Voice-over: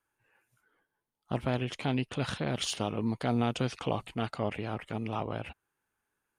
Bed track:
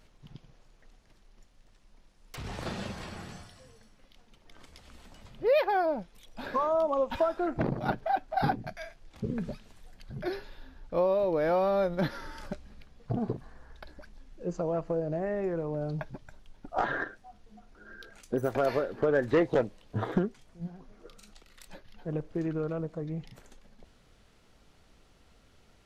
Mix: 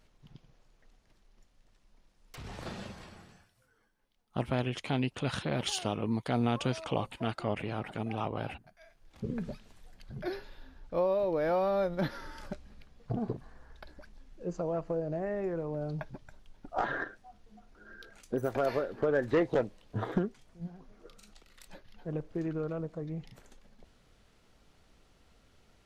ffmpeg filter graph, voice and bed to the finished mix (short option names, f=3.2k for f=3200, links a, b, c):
-filter_complex "[0:a]adelay=3050,volume=-0.5dB[a];[1:a]volume=12dB,afade=t=out:st=2.75:d=0.75:silence=0.188365,afade=t=in:st=8.78:d=0.51:silence=0.141254[b];[a][b]amix=inputs=2:normalize=0"